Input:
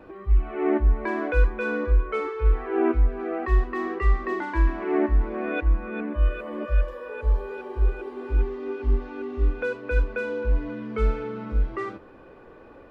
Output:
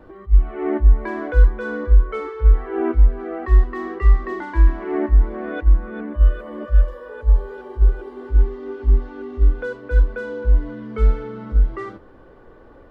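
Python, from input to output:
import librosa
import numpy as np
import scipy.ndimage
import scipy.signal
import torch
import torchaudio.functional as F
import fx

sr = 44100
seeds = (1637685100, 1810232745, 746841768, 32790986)

y = fx.low_shelf(x, sr, hz=76.0, db=11.0)
y = fx.notch(y, sr, hz=2500.0, q=6.2)
y = fx.attack_slew(y, sr, db_per_s=390.0)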